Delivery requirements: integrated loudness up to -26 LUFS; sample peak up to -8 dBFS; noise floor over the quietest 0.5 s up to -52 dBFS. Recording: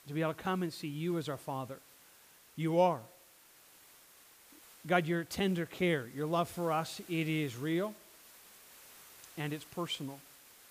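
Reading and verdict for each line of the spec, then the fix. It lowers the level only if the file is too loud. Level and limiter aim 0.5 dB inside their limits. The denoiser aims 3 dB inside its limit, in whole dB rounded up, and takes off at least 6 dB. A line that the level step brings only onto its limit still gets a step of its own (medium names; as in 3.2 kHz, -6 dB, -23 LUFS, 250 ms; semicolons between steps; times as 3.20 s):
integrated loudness -35.0 LUFS: pass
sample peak -14.5 dBFS: pass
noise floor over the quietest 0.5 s -61 dBFS: pass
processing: none needed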